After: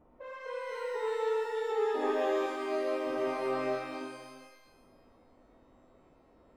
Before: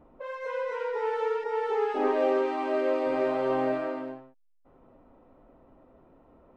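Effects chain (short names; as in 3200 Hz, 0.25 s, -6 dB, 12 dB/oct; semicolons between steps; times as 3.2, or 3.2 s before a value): 2.46–4.01 expander -26 dBFS; shimmer reverb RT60 1.2 s, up +12 st, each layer -8 dB, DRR 2.5 dB; gain -6.5 dB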